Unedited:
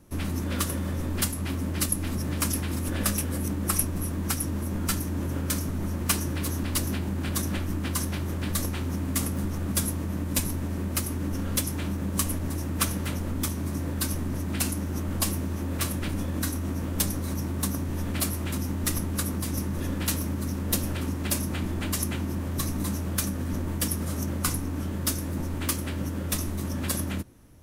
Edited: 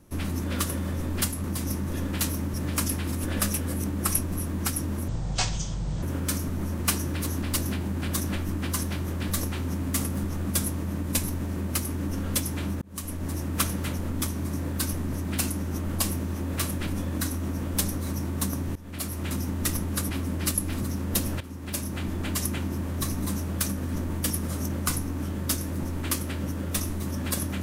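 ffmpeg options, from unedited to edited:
-filter_complex "[0:a]asplit=10[a][b][c][d][e][f][g][h][i][j];[a]atrim=end=1.442[k];[b]atrim=start=19.308:end=20.412[l];[c]atrim=start=2.178:end=4.724[m];[d]atrim=start=4.72:end=5.24,asetpts=PTS-STARTPTS,asetrate=24255,aresample=44100[n];[e]atrim=start=5.236:end=12.03,asetpts=PTS-STARTPTS,afade=t=out:st=6.79:d=0.004:c=hsin[o];[f]atrim=start=12.03:end=17.97,asetpts=PTS-STARTPTS,afade=t=in:d=0.5,afade=t=out:st=5.936:d=0.004:c=hsin:silence=0.0891251[p];[g]atrim=start=17.97:end=19.312,asetpts=PTS-STARTPTS,afade=t=in:d=0.53:silence=0.0891251[q];[h]atrim=start=1.438:end=2.182[r];[i]atrim=start=20.408:end=20.98,asetpts=PTS-STARTPTS,afade=t=out:st=0.568:d=0.004:c=hsin:silence=0.199526[s];[j]atrim=start=20.98,asetpts=PTS-STARTPTS,afade=t=in:d=1.01:c=qsin:silence=0.199526[t];[k][l]acrossfade=d=0.004:c1=hsin:c2=hsin[u];[u][m]acrossfade=d=0.004:c1=hsin:c2=hsin[v];[v][n]acrossfade=d=0.004:c1=hsin:c2=hsin[w];[o][p][q]concat=n=3:v=0:a=1[x];[w][x]acrossfade=d=0.004:c1=hsin:c2=hsin[y];[y][r]acrossfade=d=0.004:c1=hsin:c2=hsin[z];[s][t]concat=n=2:v=0:a=1[aa];[z][aa]acrossfade=d=0.004:c1=hsin:c2=hsin"

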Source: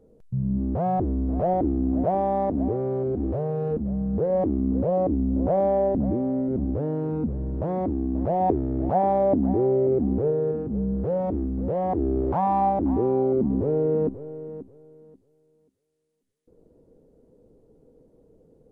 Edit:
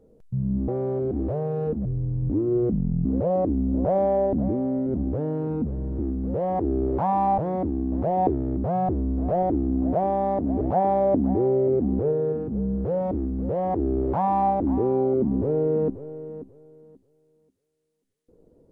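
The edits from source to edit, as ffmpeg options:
-filter_complex "[0:a]asplit=8[a][b][c][d][e][f][g][h];[a]atrim=end=0.682[i];[b]atrim=start=2.718:end=3.894[j];[c]atrim=start=3.89:end=4.67,asetpts=PTS-STARTPTS,asetrate=28665,aresample=44100[k];[d]atrim=start=4.666:end=7.612[l];[e]atrim=start=11.328:end=12.722[m];[f]atrim=start=7.608:end=8.802[n];[g]atrim=start=0.678:end=2.722[o];[h]atrim=start=8.798[p];[i][j]acrossfade=d=0.004:c1=hsin:c2=hsin[q];[q][k]acrossfade=d=0.004:c1=hsin:c2=hsin[r];[r][l]acrossfade=d=0.004:c1=hsin:c2=hsin[s];[s][m]acrossfade=d=0.004:c1=hsin:c2=hsin[t];[t][n]acrossfade=d=0.004:c1=hsin:c2=hsin[u];[u][o]acrossfade=d=0.004:c1=hsin:c2=hsin[v];[v][p]acrossfade=d=0.004:c1=hsin:c2=hsin"

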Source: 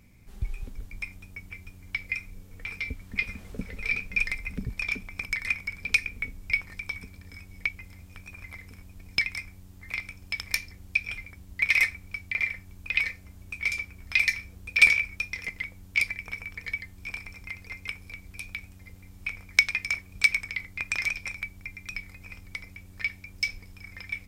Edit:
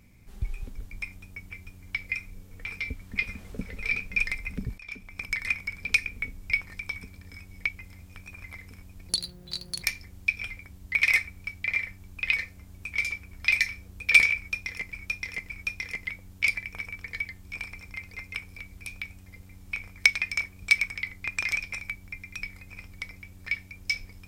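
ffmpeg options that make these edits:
-filter_complex "[0:a]asplit=6[a][b][c][d][e][f];[a]atrim=end=4.78,asetpts=PTS-STARTPTS,afade=t=out:st=4.776:d=0.004:c=hsin:silence=0.11885[g];[b]atrim=start=4.78:end=9.094,asetpts=PTS-STARTPTS,afade=t=in:d=0.56:silence=0.11885[h];[c]atrim=start=9.09:end=10.5,asetpts=PTS-STARTPTS,asetrate=84231,aresample=44100,atrim=end_sample=32555,asetpts=PTS-STARTPTS[i];[d]atrim=start=10.496:end=15.602[j];[e]atrim=start=15.028:end=15.602[k];[f]atrim=start=15.028[l];[g][h]concat=n=2:v=0:a=1[m];[m][i]acrossfade=d=0.004:c1=hsin:c2=hsin[n];[n][j]acrossfade=d=0.004:c1=hsin:c2=hsin[o];[o][k]acrossfade=d=0.004:c1=hsin:c2=hsin[p];[p][l]acrossfade=d=0.004:c1=hsin:c2=hsin"

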